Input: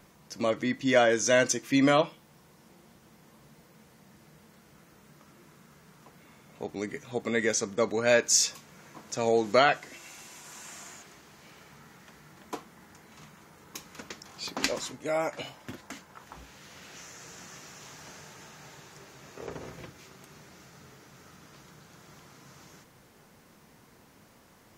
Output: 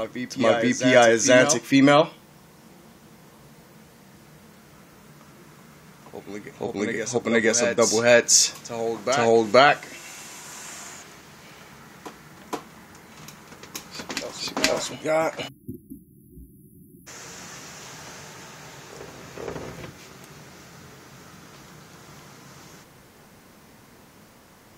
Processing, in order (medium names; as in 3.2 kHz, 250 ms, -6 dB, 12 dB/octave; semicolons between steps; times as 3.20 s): reverse echo 473 ms -9 dB; spectral selection erased 15.48–17.07 s, 370–10000 Hz; trim +6.5 dB